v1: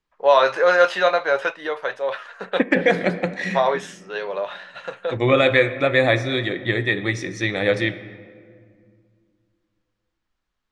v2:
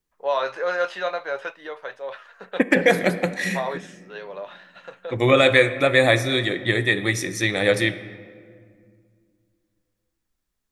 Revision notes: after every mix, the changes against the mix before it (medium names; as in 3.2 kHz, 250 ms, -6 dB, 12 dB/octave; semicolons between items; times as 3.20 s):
first voice -8.5 dB; second voice: remove distance through air 120 m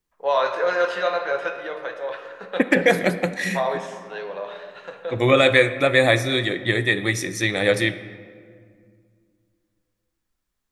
first voice: send on